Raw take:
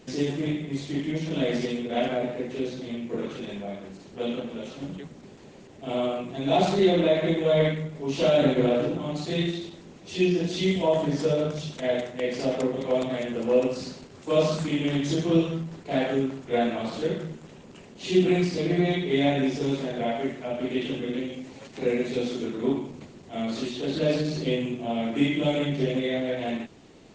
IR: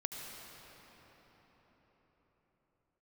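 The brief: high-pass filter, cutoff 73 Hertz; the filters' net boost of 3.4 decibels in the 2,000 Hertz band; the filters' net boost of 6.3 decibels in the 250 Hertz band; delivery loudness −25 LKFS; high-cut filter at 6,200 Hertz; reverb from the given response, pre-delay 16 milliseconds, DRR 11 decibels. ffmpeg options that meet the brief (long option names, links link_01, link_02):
-filter_complex "[0:a]highpass=73,lowpass=6200,equalizer=frequency=250:width_type=o:gain=8,equalizer=frequency=2000:width_type=o:gain=4,asplit=2[link_01][link_02];[1:a]atrim=start_sample=2205,adelay=16[link_03];[link_02][link_03]afir=irnorm=-1:irlink=0,volume=-12dB[link_04];[link_01][link_04]amix=inputs=2:normalize=0,volume=-3dB"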